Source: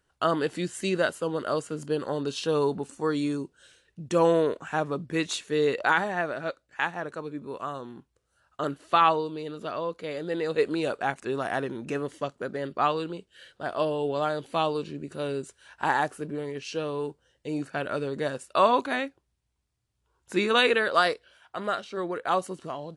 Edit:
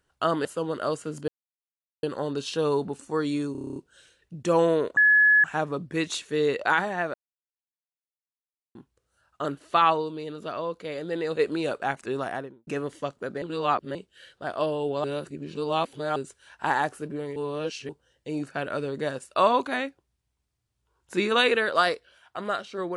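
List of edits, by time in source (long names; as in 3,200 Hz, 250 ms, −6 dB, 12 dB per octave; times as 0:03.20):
0:00.45–0:01.10: remove
0:01.93: splice in silence 0.75 s
0:03.42: stutter 0.03 s, 9 plays
0:04.63: insert tone 1,700 Hz −14.5 dBFS 0.47 s
0:06.33–0:07.94: silence
0:11.38–0:11.86: fade out and dull
0:12.61–0:13.14: reverse
0:14.23–0:15.35: reverse
0:16.55–0:17.08: reverse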